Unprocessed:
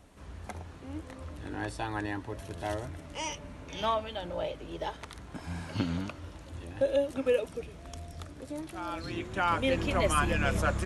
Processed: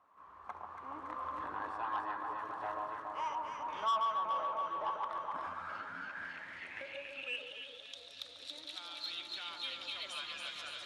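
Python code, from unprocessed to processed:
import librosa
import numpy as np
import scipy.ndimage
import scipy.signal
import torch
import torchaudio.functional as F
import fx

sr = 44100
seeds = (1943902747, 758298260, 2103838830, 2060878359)

y = fx.recorder_agc(x, sr, target_db=-19.0, rise_db_per_s=11.0, max_gain_db=30)
y = fx.echo_alternate(y, sr, ms=140, hz=1200.0, feedback_pct=85, wet_db=-2.5)
y = fx.filter_sweep_bandpass(y, sr, from_hz=1100.0, to_hz=3800.0, start_s=5.38, end_s=8.01, q=7.9)
y = 10.0 ** (-33.0 / 20.0) * np.tanh(y / 10.0 ** (-33.0 / 20.0))
y = fx.ensemble(y, sr, at=(5.48, 6.15), fade=0.02)
y = F.gain(torch.from_numpy(y), 5.5).numpy()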